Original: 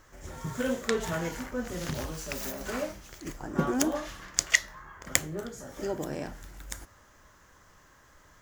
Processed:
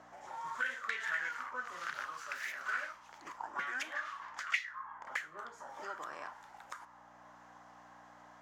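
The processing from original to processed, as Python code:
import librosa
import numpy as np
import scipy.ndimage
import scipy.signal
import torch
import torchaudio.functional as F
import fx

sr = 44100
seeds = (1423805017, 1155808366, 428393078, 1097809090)

y = fx.tilt_shelf(x, sr, db=-7.5, hz=970.0)
y = fx.add_hum(y, sr, base_hz=60, snr_db=18)
y = np.clip(10.0 ** (21.0 / 20.0) * y, -1.0, 1.0) / 10.0 ** (21.0 / 20.0)
y = fx.auto_wah(y, sr, base_hz=670.0, top_hz=2400.0, q=5.9, full_db=-25.5, direction='up')
y = fx.band_squash(y, sr, depth_pct=40)
y = y * 10.0 ** (7.0 / 20.0)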